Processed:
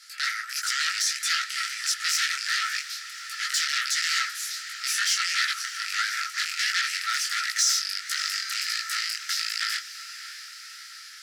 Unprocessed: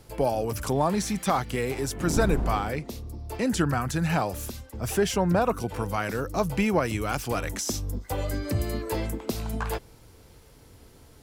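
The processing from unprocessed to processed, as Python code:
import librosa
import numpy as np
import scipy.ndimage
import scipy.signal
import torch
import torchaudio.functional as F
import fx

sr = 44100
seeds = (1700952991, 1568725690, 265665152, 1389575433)

p1 = fx.rattle_buzz(x, sr, strikes_db=-28.0, level_db=-20.0)
p2 = scipy.signal.sosfilt(scipy.signal.bessel(2, 10000.0, 'lowpass', norm='mag', fs=sr, output='sos'), p1)
p3 = fx.rider(p2, sr, range_db=5, speed_s=2.0)
p4 = p2 + (p3 * librosa.db_to_amplitude(-1.5))
p5 = fx.fold_sine(p4, sr, drive_db=16, ceiling_db=-4.0)
p6 = scipy.signal.sosfilt(scipy.signal.cheby1(6, 9, 1300.0, 'highpass', fs=sr, output='sos'), p5)
p7 = p6 + fx.echo_diffused(p6, sr, ms=602, feedback_pct=67, wet_db=-13.5, dry=0)
p8 = fx.detune_double(p7, sr, cents=51)
y = p8 * librosa.db_to_amplitude(-6.0)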